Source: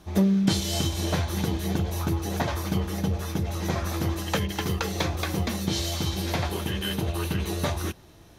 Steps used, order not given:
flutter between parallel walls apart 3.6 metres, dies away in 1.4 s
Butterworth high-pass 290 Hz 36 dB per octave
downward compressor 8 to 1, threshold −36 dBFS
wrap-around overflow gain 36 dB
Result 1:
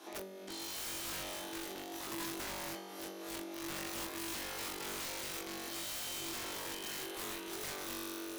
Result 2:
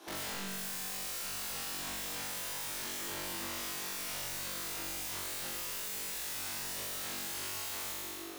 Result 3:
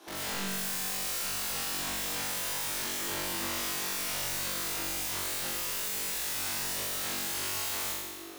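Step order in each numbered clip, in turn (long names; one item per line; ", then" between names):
flutter between parallel walls, then downward compressor, then Butterworth high-pass, then wrap-around overflow
Butterworth high-pass, then wrap-around overflow, then flutter between parallel walls, then downward compressor
Butterworth high-pass, then wrap-around overflow, then downward compressor, then flutter between parallel walls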